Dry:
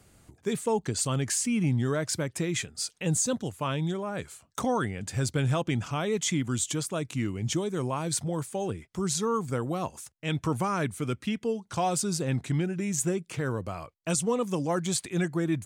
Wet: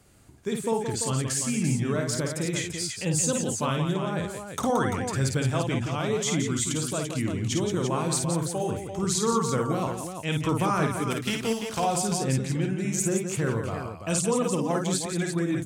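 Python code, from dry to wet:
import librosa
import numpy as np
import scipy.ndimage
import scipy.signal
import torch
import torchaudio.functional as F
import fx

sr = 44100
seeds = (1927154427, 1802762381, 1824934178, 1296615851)

p1 = fx.spec_flatten(x, sr, power=0.59, at=(11.1, 11.78), fade=0.02)
p2 = p1 + fx.echo_multitap(p1, sr, ms=(53, 174, 341), db=(-4.5, -7.5, -7.5), dry=0)
y = fx.rider(p2, sr, range_db=10, speed_s=2.0)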